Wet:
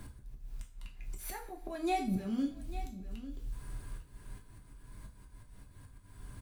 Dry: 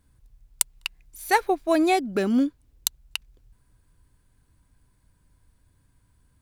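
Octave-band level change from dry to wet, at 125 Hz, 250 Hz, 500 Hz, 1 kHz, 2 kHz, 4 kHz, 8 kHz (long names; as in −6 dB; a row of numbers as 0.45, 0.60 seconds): can't be measured, −11.5 dB, −17.0 dB, −13.5 dB, −18.5 dB, −18.5 dB, −21.0 dB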